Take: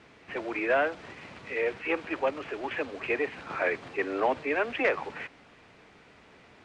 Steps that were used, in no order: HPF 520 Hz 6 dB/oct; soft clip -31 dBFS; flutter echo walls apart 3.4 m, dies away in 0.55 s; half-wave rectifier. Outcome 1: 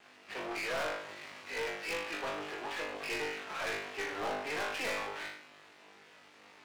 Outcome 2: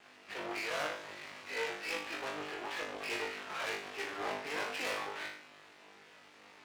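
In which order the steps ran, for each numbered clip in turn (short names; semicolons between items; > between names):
flutter echo > half-wave rectifier > HPF > soft clip; soft clip > flutter echo > half-wave rectifier > HPF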